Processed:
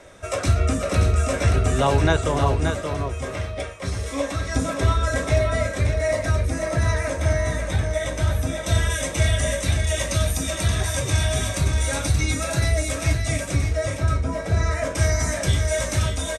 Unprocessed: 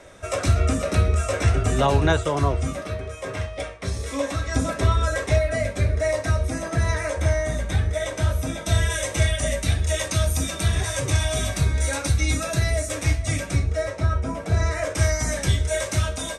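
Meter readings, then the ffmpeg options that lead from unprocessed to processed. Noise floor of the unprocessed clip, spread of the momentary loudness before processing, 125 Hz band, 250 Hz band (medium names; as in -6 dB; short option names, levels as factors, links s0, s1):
-35 dBFS, 6 LU, +0.5 dB, +1.0 dB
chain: -af "aecho=1:1:577:0.501"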